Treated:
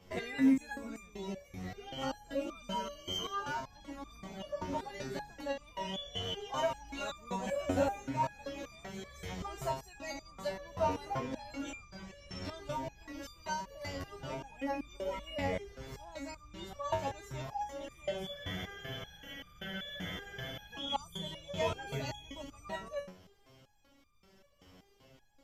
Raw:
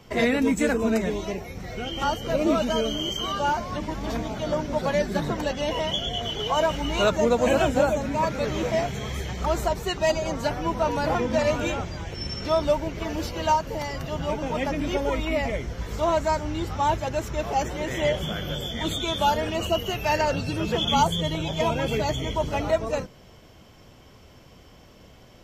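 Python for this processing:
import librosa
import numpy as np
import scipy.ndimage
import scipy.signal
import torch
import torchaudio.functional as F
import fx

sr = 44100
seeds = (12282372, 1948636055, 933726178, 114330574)

y = fx.spec_freeze(x, sr, seeds[0], at_s=18.38, hold_s=2.33)
y = fx.resonator_held(y, sr, hz=5.2, low_hz=92.0, high_hz=1200.0)
y = y * librosa.db_to_amplitude(1.0)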